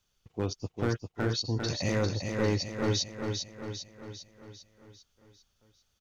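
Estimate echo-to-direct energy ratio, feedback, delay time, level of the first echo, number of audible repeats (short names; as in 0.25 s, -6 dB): -3.5 dB, 54%, 0.399 s, -5.0 dB, 6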